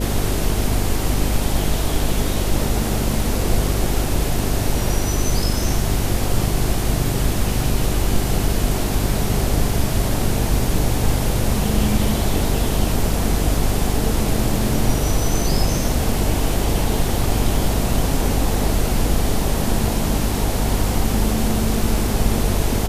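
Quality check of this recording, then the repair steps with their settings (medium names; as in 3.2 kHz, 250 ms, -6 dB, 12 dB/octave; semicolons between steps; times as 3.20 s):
buzz 50 Hz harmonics 9 -23 dBFS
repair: de-hum 50 Hz, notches 9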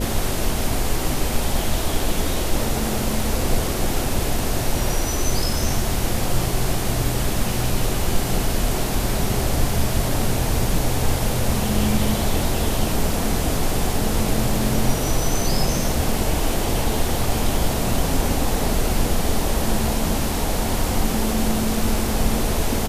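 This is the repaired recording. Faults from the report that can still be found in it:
nothing left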